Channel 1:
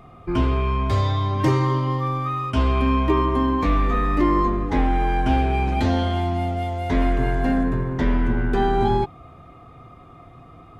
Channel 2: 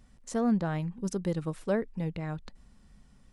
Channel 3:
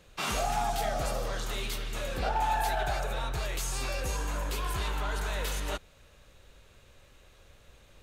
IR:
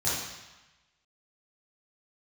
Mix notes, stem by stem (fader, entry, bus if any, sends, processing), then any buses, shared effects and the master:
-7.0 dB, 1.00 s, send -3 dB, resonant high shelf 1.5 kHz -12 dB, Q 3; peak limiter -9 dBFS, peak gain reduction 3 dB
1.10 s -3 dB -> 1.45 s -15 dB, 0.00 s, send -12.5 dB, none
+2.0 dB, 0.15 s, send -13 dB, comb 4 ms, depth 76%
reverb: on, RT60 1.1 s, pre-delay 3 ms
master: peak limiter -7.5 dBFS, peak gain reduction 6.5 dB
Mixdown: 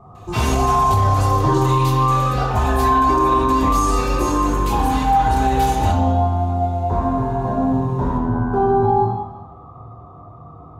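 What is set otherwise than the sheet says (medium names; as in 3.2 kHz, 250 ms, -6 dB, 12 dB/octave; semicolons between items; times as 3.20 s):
stem 1: entry 1.00 s -> 0.00 s; stem 2 -3.0 dB -> -13.0 dB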